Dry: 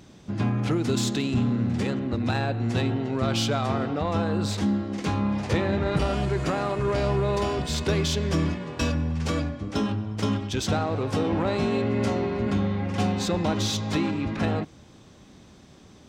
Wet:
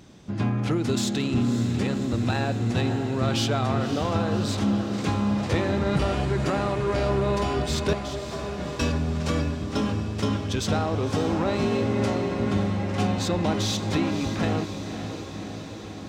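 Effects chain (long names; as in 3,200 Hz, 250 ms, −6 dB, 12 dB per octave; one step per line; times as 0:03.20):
0:07.93–0:08.58: four-pole ladder high-pass 600 Hz, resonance 70%
feedback delay with all-pass diffusion 566 ms, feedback 72%, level −10 dB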